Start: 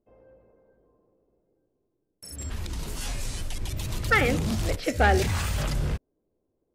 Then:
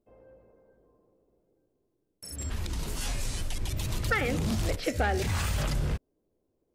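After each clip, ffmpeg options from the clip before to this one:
-af "acompressor=threshold=-24dB:ratio=6"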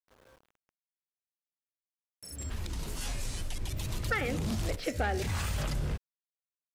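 -af "aeval=exprs='val(0)*gte(abs(val(0)),0.00251)':c=same,volume=-3.5dB"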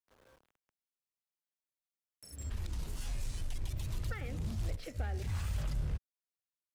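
-filter_complex "[0:a]asplit=2[a][b];[b]acrusher=bits=5:mix=0:aa=0.5,volume=-7.5dB[c];[a][c]amix=inputs=2:normalize=0,acrossover=split=130[d][e];[e]acompressor=threshold=-50dB:ratio=2[f];[d][f]amix=inputs=2:normalize=0,volume=-4dB"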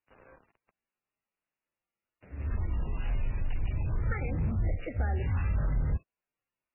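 -af "asoftclip=type=tanh:threshold=-29.5dB,volume=9dB" -ar 11025 -c:a libmp3lame -b:a 8k

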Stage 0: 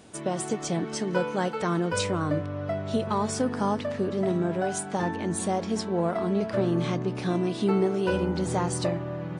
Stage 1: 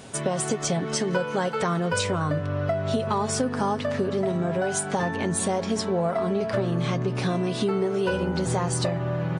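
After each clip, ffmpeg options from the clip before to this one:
-af "equalizer=f=310:w=4.5:g=-8.5,aecho=1:1:7.4:0.36,acompressor=threshold=-31dB:ratio=4,volume=8.5dB"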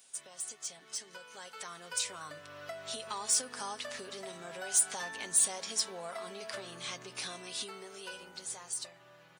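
-af "aderivative,asoftclip=type=tanh:threshold=-21.5dB,dynaudnorm=f=370:g=11:m=12dB,volume=-8dB"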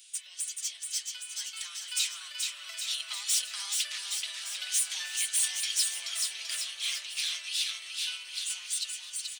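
-filter_complex "[0:a]aeval=exprs='(tanh(39.8*val(0)+0.5)-tanh(0.5))/39.8':c=same,highpass=f=2.9k:t=q:w=2,asplit=2[a][b];[b]aecho=0:1:430|817|1165|1479|1761:0.631|0.398|0.251|0.158|0.1[c];[a][c]amix=inputs=2:normalize=0,volume=7dB"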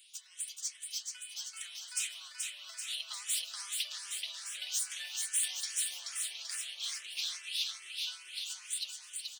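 -filter_complex "[0:a]asplit=2[a][b];[b]afreqshift=2.4[c];[a][c]amix=inputs=2:normalize=1,volume=-2.5dB"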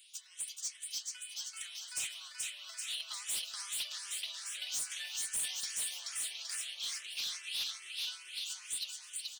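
-af "asoftclip=type=hard:threshold=-32.5dB"

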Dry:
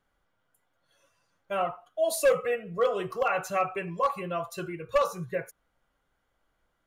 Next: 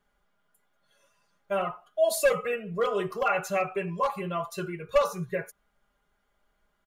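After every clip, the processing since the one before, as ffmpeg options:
-af "aecho=1:1:4.9:0.65"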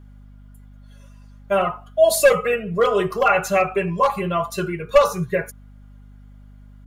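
-af "aeval=exprs='val(0)+0.00251*(sin(2*PI*50*n/s)+sin(2*PI*2*50*n/s)/2+sin(2*PI*3*50*n/s)/3+sin(2*PI*4*50*n/s)/4+sin(2*PI*5*50*n/s)/5)':c=same,volume=9dB"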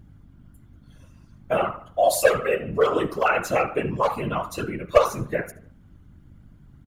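-filter_complex "[0:a]asplit=2[a][b];[b]adelay=75,lowpass=f=2.9k:p=1,volume=-15dB,asplit=2[c][d];[d]adelay=75,lowpass=f=2.9k:p=1,volume=0.46,asplit=2[e][f];[f]adelay=75,lowpass=f=2.9k:p=1,volume=0.46,asplit=2[g][h];[h]adelay=75,lowpass=f=2.9k:p=1,volume=0.46[i];[a][c][e][g][i]amix=inputs=5:normalize=0,afftfilt=real='hypot(re,im)*cos(2*PI*random(0))':imag='hypot(re,im)*sin(2*PI*random(1))':win_size=512:overlap=0.75,volume=2dB"

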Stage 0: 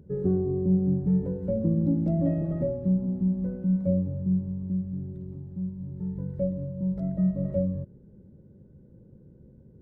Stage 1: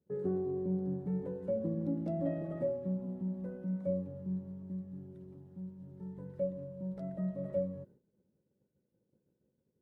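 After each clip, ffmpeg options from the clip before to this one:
-af "agate=range=-33dB:threshold=-41dB:ratio=3:detection=peak,highpass=f=700:p=1"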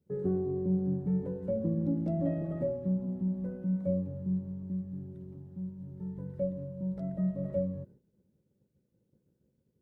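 -af "lowshelf=f=190:g=10.5"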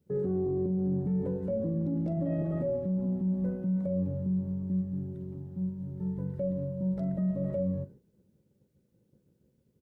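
-filter_complex "[0:a]alimiter=level_in=5.5dB:limit=-24dB:level=0:latency=1:release=17,volume=-5.5dB,asplit=2[a][b];[b]adelay=43,volume=-14dB[c];[a][c]amix=inputs=2:normalize=0,volume=4.5dB"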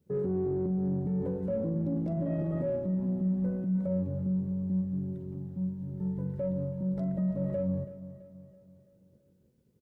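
-filter_complex "[0:a]asplit=2[a][b];[b]asoftclip=type=tanh:threshold=-32.5dB,volume=-11dB[c];[a][c]amix=inputs=2:normalize=0,aecho=1:1:331|662|993|1324|1655:0.178|0.0871|0.0427|0.0209|0.0103,volume=-1.5dB"

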